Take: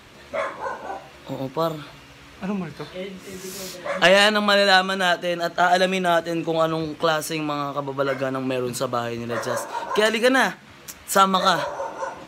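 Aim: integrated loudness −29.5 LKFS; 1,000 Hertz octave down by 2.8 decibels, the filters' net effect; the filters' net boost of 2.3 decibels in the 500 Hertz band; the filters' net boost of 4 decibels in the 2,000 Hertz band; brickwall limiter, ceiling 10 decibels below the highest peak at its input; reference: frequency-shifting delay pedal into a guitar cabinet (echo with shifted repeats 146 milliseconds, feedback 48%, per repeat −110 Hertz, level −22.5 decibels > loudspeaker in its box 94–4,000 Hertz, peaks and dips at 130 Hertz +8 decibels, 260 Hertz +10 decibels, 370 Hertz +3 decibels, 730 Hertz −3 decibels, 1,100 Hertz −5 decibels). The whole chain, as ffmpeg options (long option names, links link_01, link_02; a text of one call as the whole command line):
ffmpeg -i in.wav -filter_complex "[0:a]equalizer=frequency=500:width_type=o:gain=3.5,equalizer=frequency=1000:width_type=o:gain=-4.5,equalizer=frequency=2000:width_type=o:gain=7.5,alimiter=limit=-9.5dB:level=0:latency=1,asplit=4[link_01][link_02][link_03][link_04];[link_02]adelay=146,afreqshift=-110,volume=-22.5dB[link_05];[link_03]adelay=292,afreqshift=-220,volume=-28.9dB[link_06];[link_04]adelay=438,afreqshift=-330,volume=-35.3dB[link_07];[link_01][link_05][link_06][link_07]amix=inputs=4:normalize=0,highpass=94,equalizer=frequency=130:width_type=q:width=4:gain=8,equalizer=frequency=260:width_type=q:width=4:gain=10,equalizer=frequency=370:width_type=q:width=4:gain=3,equalizer=frequency=730:width_type=q:width=4:gain=-3,equalizer=frequency=1100:width_type=q:width=4:gain=-5,lowpass=frequency=4000:width=0.5412,lowpass=frequency=4000:width=1.3066,volume=-7.5dB" out.wav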